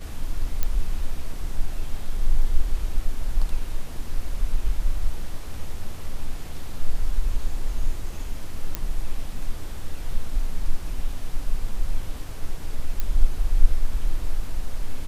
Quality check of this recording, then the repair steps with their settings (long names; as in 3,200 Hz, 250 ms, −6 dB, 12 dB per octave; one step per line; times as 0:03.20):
0:00.63: click −9 dBFS
0:08.75: click −9 dBFS
0:13.00: click −11 dBFS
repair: click removal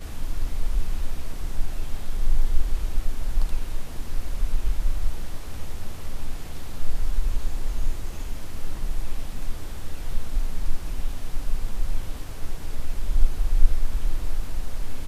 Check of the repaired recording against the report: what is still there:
none of them is left